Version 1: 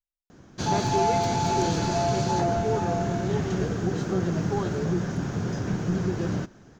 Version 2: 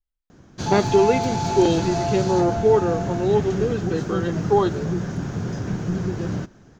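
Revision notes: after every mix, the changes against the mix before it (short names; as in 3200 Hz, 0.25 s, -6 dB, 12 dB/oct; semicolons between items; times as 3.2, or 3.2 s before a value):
speech +11.5 dB; master: add low shelf 150 Hz +3.5 dB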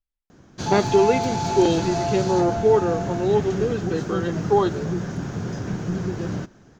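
master: add low shelf 150 Hz -3.5 dB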